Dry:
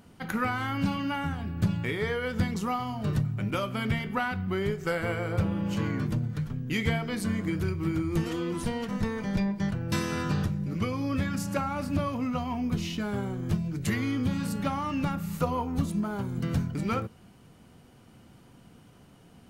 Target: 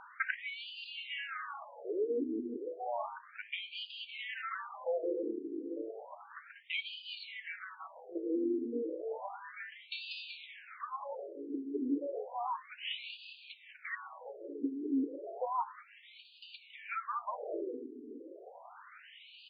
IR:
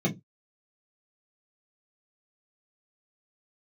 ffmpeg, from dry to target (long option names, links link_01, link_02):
-filter_complex "[0:a]asplit=8[link_01][link_02][link_03][link_04][link_05][link_06][link_07][link_08];[link_02]adelay=190,afreqshift=-150,volume=-7.5dB[link_09];[link_03]adelay=380,afreqshift=-300,volume=-12.9dB[link_10];[link_04]adelay=570,afreqshift=-450,volume=-18.2dB[link_11];[link_05]adelay=760,afreqshift=-600,volume=-23.6dB[link_12];[link_06]adelay=950,afreqshift=-750,volume=-28.9dB[link_13];[link_07]adelay=1140,afreqshift=-900,volume=-34.3dB[link_14];[link_08]adelay=1330,afreqshift=-1050,volume=-39.6dB[link_15];[link_01][link_09][link_10][link_11][link_12][link_13][link_14][link_15]amix=inputs=8:normalize=0,acompressor=threshold=-39dB:ratio=16,afftfilt=real='re*between(b*sr/1024,320*pow(3500/320,0.5+0.5*sin(2*PI*0.32*pts/sr))/1.41,320*pow(3500/320,0.5+0.5*sin(2*PI*0.32*pts/sr))*1.41)':imag='im*between(b*sr/1024,320*pow(3500/320,0.5+0.5*sin(2*PI*0.32*pts/sr))/1.41,320*pow(3500/320,0.5+0.5*sin(2*PI*0.32*pts/sr))*1.41)':win_size=1024:overlap=0.75,volume=13.5dB"